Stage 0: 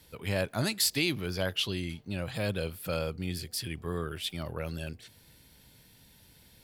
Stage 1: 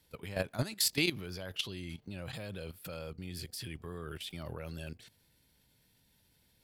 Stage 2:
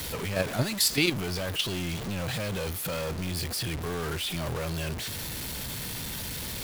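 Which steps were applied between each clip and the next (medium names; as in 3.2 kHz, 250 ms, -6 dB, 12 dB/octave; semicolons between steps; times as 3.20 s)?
level held to a coarse grid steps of 14 dB
jump at every zero crossing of -33.5 dBFS; trim +4 dB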